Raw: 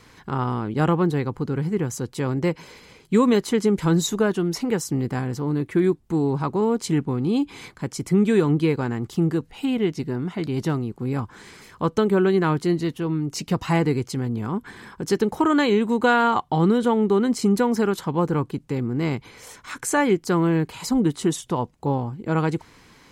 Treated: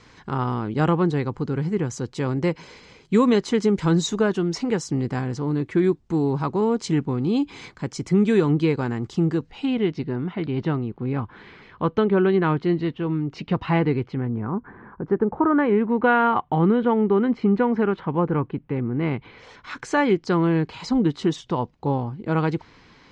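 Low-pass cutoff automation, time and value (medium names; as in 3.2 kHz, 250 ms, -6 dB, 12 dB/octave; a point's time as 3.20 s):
low-pass 24 dB/octave
9.29 s 6.9 kHz
10.31 s 3.5 kHz
13.96 s 3.5 kHz
14.60 s 1.5 kHz
15.34 s 1.5 kHz
16.16 s 2.7 kHz
18.98 s 2.7 kHz
19.76 s 5.2 kHz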